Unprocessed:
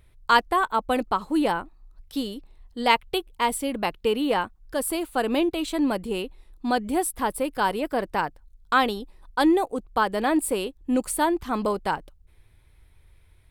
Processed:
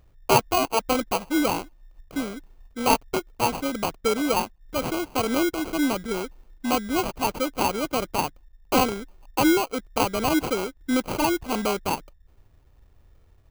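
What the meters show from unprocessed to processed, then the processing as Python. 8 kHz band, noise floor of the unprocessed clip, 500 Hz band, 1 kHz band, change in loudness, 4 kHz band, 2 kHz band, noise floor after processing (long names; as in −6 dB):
+2.5 dB, −57 dBFS, +0.5 dB, −1.0 dB, 0.0 dB, +1.5 dB, −1.5 dB, −57 dBFS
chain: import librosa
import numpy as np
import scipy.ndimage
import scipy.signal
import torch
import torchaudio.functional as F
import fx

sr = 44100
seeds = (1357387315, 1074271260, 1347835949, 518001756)

y = fx.sample_hold(x, sr, seeds[0], rate_hz=1800.0, jitter_pct=0)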